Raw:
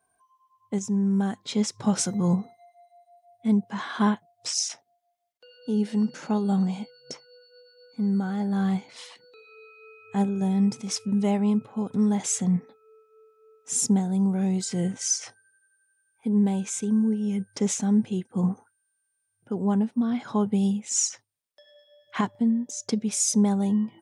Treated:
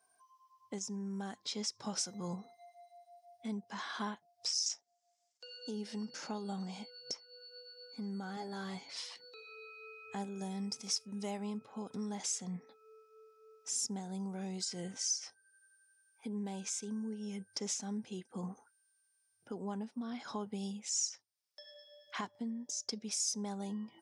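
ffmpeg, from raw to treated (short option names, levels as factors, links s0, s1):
-filter_complex "[0:a]asettb=1/sr,asplit=3[s0][s1][s2];[s0]atrim=end=4.664[s3];[s1]atrim=start=4.66:end=5.71,asetpts=PTS-STARTPTS,afade=t=in:d=0.004:c=qsin,afade=t=out:st=1.046:d=0.004:c=qsin,lowpass=f=7300:t=q:w=4.4[s4];[s2]atrim=start=5.706[s5];[s3][s4]acrossfade=d=0.004:c1=hsin:c2=qsin[s6];[s6][s5]acrossfade=d=0.004:c1=qsin:c2=hsin,asettb=1/sr,asplit=3[s7][s8][s9];[s7]atrim=end=8.364[s10];[s8]atrim=start=8.36:end=9.03,asetpts=PTS-STARTPTS,afade=t=in:d=0.004:c=qsin,afade=t=out:st=0.666:d=0.004:c=qsin,aecho=1:1:7.2:0.65,atrim=end_sample=29547[s11];[s9]atrim=start=9.026[s12];[s10][s11]acrossfade=d=0.004:c1=hsin:c2=qsin[s13];[s13][s12]acrossfade=d=0.004:c1=qsin:c2=hsin,asettb=1/sr,asplit=3[s14][s15][s16];[s14]atrim=end=10.224[s17];[s15]atrim=start=10.22:end=11.47,asetpts=PTS-STARTPTS,afade=t=in:d=0.004:c=qsin,afade=t=out:st=1.246:d=0.004:c=qsin,highshelf=f=8800:g=11[s18];[s16]atrim=start=11.466[s19];[s17][s18]acrossfade=d=0.004:c1=hsin:c2=qsin[s20];[s20][s19]acrossfade=d=0.004:c1=qsin:c2=hsin,highpass=f=460:p=1,equalizer=f=5200:t=o:w=0.55:g=11,acompressor=threshold=0.00631:ratio=2,volume=0.891"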